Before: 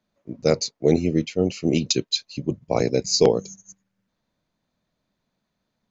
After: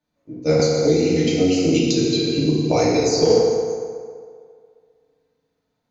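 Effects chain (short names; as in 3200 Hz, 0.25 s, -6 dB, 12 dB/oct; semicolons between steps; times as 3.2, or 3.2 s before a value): FDN reverb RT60 2.1 s, low-frequency decay 0.75×, high-frequency decay 0.55×, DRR -9 dB; 0.59–3.3 three-band squash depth 100%; gain -7.5 dB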